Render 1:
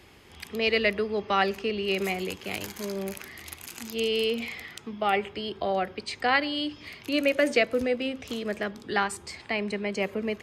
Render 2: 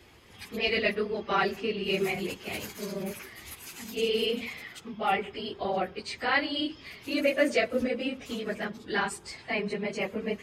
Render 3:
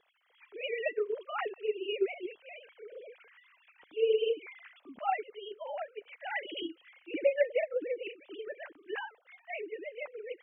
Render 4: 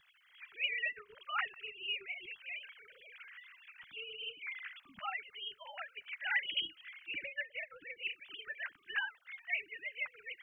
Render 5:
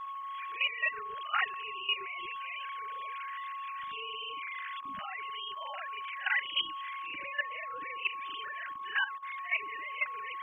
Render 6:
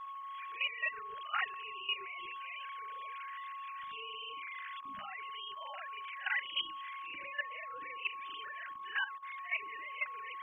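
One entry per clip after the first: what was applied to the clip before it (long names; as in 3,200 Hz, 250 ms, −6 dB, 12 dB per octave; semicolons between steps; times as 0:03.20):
random phases in long frames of 50 ms; level −2 dB
three sine waves on the formant tracks; level −5 dB
downward compressor 4 to 1, threshold −34 dBFS, peak gain reduction 11.5 dB; drawn EQ curve 120 Hz 0 dB, 190 Hz −6 dB, 330 Hz −29 dB, 490 Hz −29 dB, 1,500 Hz −1 dB; level +8 dB
backwards echo 40 ms −9 dB; steady tone 1,100 Hz −45 dBFS; output level in coarse steps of 12 dB; level +8 dB
mains-hum notches 60/120/180/240/300/360/420 Hz; level −4.5 dB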